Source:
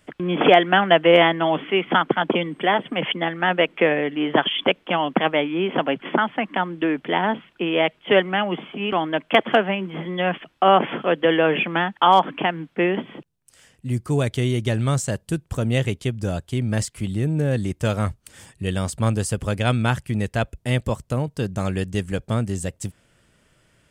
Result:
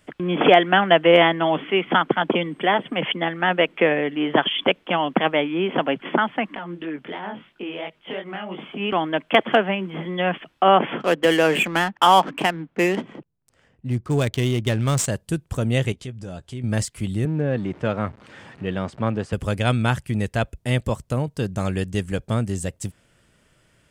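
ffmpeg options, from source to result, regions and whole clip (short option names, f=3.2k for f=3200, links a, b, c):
-filter_complex "[0:a]asettb=1/sr,asplit=3[a][b][c];[a]atrim=end=6.554[d];[b]atrim=start=6.55:end=8.59,asetpts=PTS-STARTPTS,afade=t=in:d=0.004:c=qsin,afade=t=out:st=2.036:d=0.004:c=qsin,acompressor=threshold=-25dB:ratio=4:attack=3.2:release=140:knee=1:detection=peak,flanger=delay=18.5:depth=5:speed=2.9[e];[c]atrim=start=8.586[f];[d][e]acrossfade=d=0.004:c1=hsin:c2=qsin[g];[g][f]acrossfade=d=0.004:c1=qsin:c2=hsin,asettb=1/sr,asplit=3[h][i][j];[h]atrim=end=11.004[k];[i]atrim=start=11:end=15.06,asetpts=PTS-STARTPTS,afade=t=in:d=0.004:c=qsin,afade=t=out:st=4.056:d=0.004:c=qsin,aemphasis=mode=production:type=50kf,adynamicsmooth=sensitivity=5:basefreq=1.3k[l];[j]atrim=start=15.056[m];[k][l]acrossfade=d=0.004:c1=hsin:c2=qsin[n];[n][m]acrossfade=d=0.004:c1=qsin:c2=hsin,asettb=1/sr,asplit=3[o][p][q];[o]atrim=end=15.924[r];[p]atrim=start=15.92:end=16.64,asetpts=PTS-STARTPTS,afade=t=in:d=0.004:c=qsin,afade=t=out:st=0.716:d=0.004:c=qsin,lowpass=8.7k,acompressor=threshold=-35dB:ratio=2.5:attack=3.2:release=140:knee=1:detection=peak,asplit=2[s][t];[t]adelay=16,volume=-11dB[u];[s][u]amix=inputs=2:normalize=0,atrim=end_sample=31752[v];[q]atrim=start=16.636[w];[r][v]acrossfade=d=0.004:c1=hsin:c2=qsin[x];[x][w]acrossfade=d=0.004:c1=qsin:c2=hsin,asettb=1/sr,asplit=3[y][z][aa];[y]atrim=end=17.254[ab];[z]atrim=start=17.25:end=19.33,asetpts=PTS-STARTPTS,afade=t=in:d=0.004:c=qsin,afade=t=out:st=2.076:d=0.004:c=qsin,aeval=exprs='val(0)+0.5*0.0141*sgn(val(0))':c=same,highpass=150,lowpass=2.4k[ac];[aa]atrim=start=19.326[ad];[ab][ac]acrossfade=d=0.004:c1=hsin:c2=qsin[ae];[ae][ad]acrossfade=d=0.004:c1=qsin:c2=hsin"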